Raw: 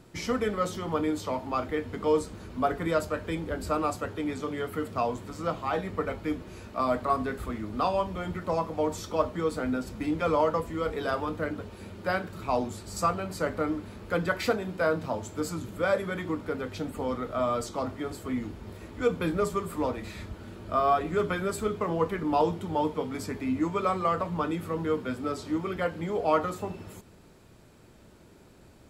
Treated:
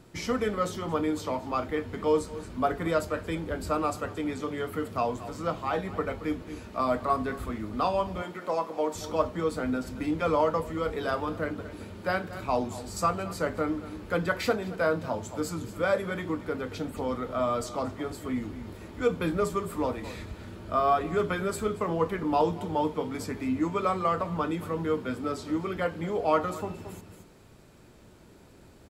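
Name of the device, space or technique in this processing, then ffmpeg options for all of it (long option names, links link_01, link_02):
ducked delay: -filter_complex "[0:a]asplit=3[link_01][link_02][link_03];[link_02]adelay=225,volume=-7dB[link_04];[link_03]apad=whole_len=1284018[link_05];[link_04][link_05]sidechaincompress=threshold=-42dB:ratio=8:attack=16:release=213[link_06];[link_01][link_06]amix=inputs=2:normalize=0,asettb=1/sr,asplit=3[link_07][link_08][link_09];[link_07]atrim=end=8.224[link_10];[link_08]atrim=start=8.22:end=8.95,asetpts=PTS-STARTPTS,afade=type=in:duration=0.004:curve=qsin,afade=type=out:start_time=0.726:duration=0.004:curve=qsin,highpass=300[link_11];[link_09]atrim=start=8.946[link_12];[link_10][link_11]acrossfade=duration=0.004:curve1=hsin:curve2=qsin[link_13];[link_13][link_12]acrossfade=duration=0.004:curve1=qsin:curve2=hsin"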